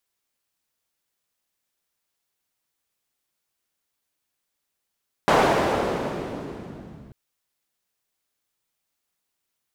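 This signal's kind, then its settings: swept filtered noise pink, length 1.84 s bandpass, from 710 Hz, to 140 Hz, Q 1, linear, gain ramp -29 dB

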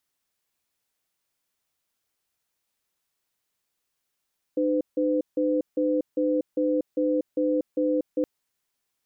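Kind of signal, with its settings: cadence 303 Hz, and 507 Hz, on 0.24 s, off 0.16 s, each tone -23.5 dBFS 3.67 s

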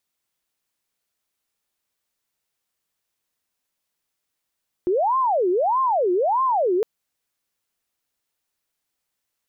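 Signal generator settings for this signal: siren wail 353–1060 Hz 1.6 per s sine -17 dBFS 1.96 s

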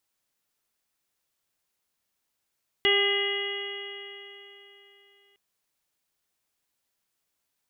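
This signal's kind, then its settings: stretched partials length 2.51 s, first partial 399 Hz, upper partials -10.5/-12.5/-14/1/-17.5/2/-5 dB, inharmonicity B 0.0012, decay 3.44 s, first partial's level -24 dB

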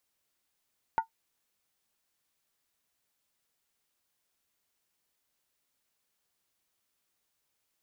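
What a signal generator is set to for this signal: skin hit, lowest mode 902 Hz, decay 0.11 s, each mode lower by 12 dB, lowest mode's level -18.5 dB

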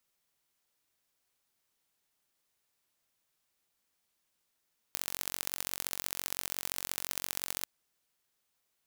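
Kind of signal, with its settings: pulse train 45.8 per s, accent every 3, -5.5 dBFS 2.70 s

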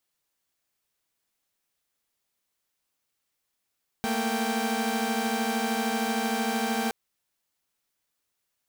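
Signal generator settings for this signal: chord A3/A#3/G5 saw, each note -27.5 dBFS 2.87 s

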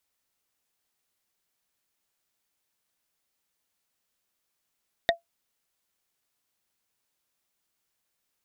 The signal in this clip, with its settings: wood hit, lowest mode 678 Hz, modes 3, decay 0.13 s, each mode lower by 0 dB, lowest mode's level -15 dB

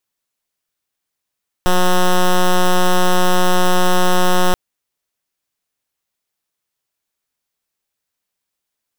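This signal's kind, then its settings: pulse 181 Hz, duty 8% -11.5 dBFS 2.88 s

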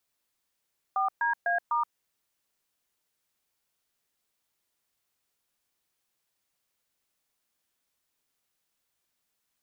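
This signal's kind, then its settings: DTMF "4DA*", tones 125 ms, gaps 125 ms, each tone -26.5 dBFS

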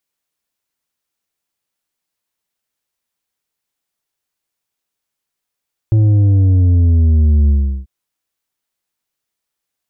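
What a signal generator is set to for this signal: sub drop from 110 Hz, over 1.94 s, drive 6.5 dB, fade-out 0.37 s, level -8.5 dB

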